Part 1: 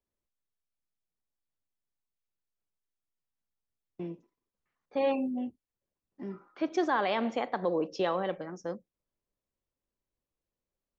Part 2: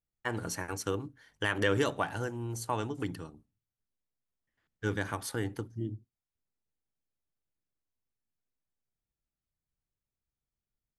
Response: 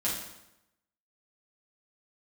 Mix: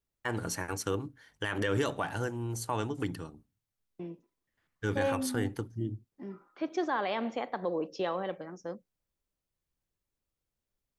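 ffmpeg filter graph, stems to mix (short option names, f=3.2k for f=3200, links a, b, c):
-filter_complex "[0:a]volume=-3dB[a];[1:a]alimiter=limit=-21dB:level=0:latency=1:release=16,volume=1.5dB[b];[a][b]amix=inputs=2:normalize=0"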